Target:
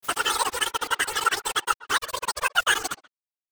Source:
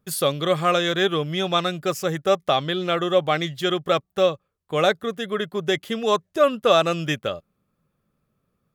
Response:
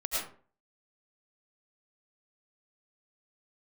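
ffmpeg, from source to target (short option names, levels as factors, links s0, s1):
-filter_complex "[0:a]aeval=exprs='val(0)*gte(abs(val(0)),0.0794)':c=same,asetrate=109809,aresample=44100,asplit=2[s0][s1];[s1]adelay=130,highpass=300,lowpass=3400,asoftclip=type=hard:threshold=0.224,volume=0.1[s2];[s0][s2]amix=inputs=2:normalize=0,afftfilt=real='hypot(re,im)*cos(2*PI*random(0))':imag='hypot(re,im)*sin(2*PI*random(1))':win_size=512:overlap=0.75,volume=1.41"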